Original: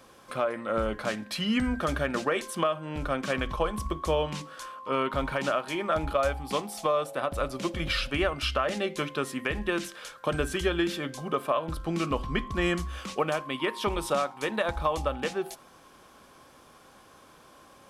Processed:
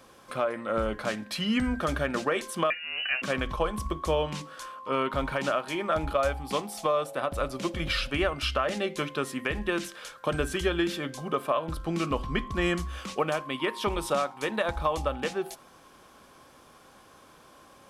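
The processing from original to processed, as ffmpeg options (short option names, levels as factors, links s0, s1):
-filter_complex "[0:a]asettb=1/sr,asplit=3[s0][s1][s2];[s0]atrim=end=2.704[s3];[s1]atrim=start=2.7:end=3.22,asetpts=PTS-STARTPTS,afade=t=in:d=0.004:c=qsin,afade=t=out:st=0.516:d=0.004:c=qsin,lowpass=f=2600:t=q:w=0.5098,lowpass=f=2600:t=q:w=0.6013,lowpass=f=2600:t=q:w=0.9,lowpass=f=2600:t=q:w=2.563,afreqshift=-3000[s4];[s2]atrim=start=3.216[s5];[s3][s4]acrossfade=d=0.004:c1=hsin:c2=qsin[s6];[s6][s5]acrossfade=d=0.004:c1=qsin:c2=hsin"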